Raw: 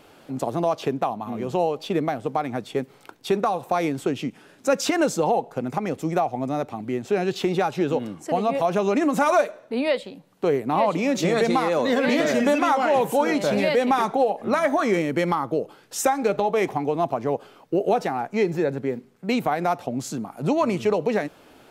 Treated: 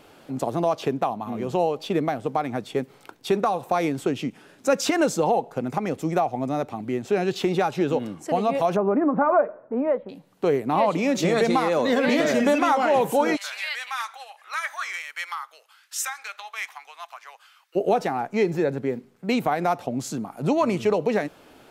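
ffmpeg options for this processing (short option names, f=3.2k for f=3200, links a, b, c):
-filter_complex "[0:a]asettb=1/sr,asplit=3[a][b][c];[a]atrim=end=8.764[d];[b]atrim=start=8.76:end=10.09,asetpts=PTS-STARTPTS,afade=t=in:d=0.004:c=qsin,afade=t=out:st=1.326:d=0.004:c=qsin,lowpass=f=1.4k:w=0.5412,lowpass=f=1.4k:w=1.3066[e];[c]atrim=start=10.086[f];[d][e]acrossfade=d=0.004:c1=hsin:c2=qsin[g];[g][f]acrossfade=d=0.004:c1=qsin:c2=hsin,asplit=3[h][i][j];[h]afade=t=out:st=13.35:d=0.02[k];[i]highpass=f=1.3k:w=0.5412,highpass=f=1.3k:w=1.3066,afade=t=in:st=13.35:d=0.02,afade=t=out:st=17.75:d=0.02[l];[j]afade=t=in:st=17.75:d=0.02[m];[k][l][m]amix=inputs=3:normalize=0"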